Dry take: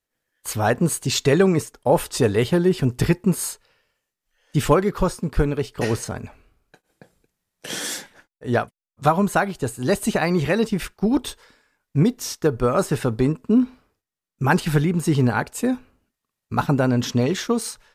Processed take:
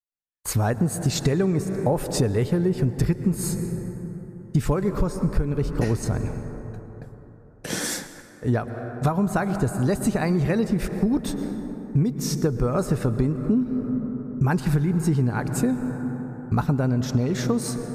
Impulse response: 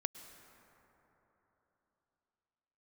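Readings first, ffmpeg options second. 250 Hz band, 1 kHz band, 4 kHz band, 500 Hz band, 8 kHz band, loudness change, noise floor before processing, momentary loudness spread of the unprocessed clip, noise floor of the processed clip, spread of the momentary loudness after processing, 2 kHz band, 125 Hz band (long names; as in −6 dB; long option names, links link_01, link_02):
−1.5 dB, −6.5 dB, −5.5 dB, −5.0 dB, −3.0 dB, −3.0 dB, −85 dBFS, 9 LU, −46 dBFS, 10 LU, −7.0 dB, +0.5 dB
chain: -filter_complex "[0:a]agate=range=-33dB:threshold=-49dB:ratio=3:detection=peak,lowshelf=frequency=240:gain=11,asplit=2[link_01][link_02];[1:a]atrim=start_sample=2205[link_03];[link_02][link_03]afir=irnorm=-1:irlink=0,volume=6.5dB[link_04];[link_01][link_04]amix=inputs=2:normalize=0,acompressor=threshold=-10dB:ratio=6,equalizer=frequency=3100:width=3.2:gain=-7.5,volume=-8.5dB"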